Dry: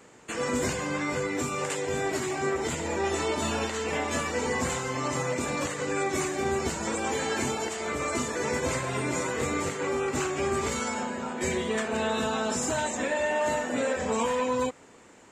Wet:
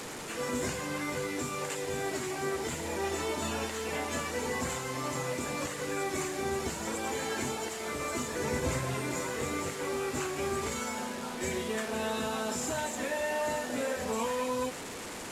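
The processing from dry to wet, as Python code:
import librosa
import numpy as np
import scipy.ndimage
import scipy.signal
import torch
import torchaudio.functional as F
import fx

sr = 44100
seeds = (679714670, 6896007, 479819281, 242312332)

y = fx.delta_mod(x, sr, bps=64000, step_db=-30.0)
y = fx.low_shelf(y, sr, hz=210.0, db=8.5, at=(8.32, 8.95))
y = y * 10.0 ** (-5.0 / 20.0)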